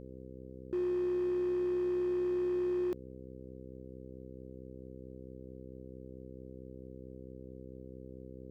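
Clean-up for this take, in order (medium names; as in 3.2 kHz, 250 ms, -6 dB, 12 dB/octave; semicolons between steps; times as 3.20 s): clip repair -29 dBFS; de-hum 64.5 Hz, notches 8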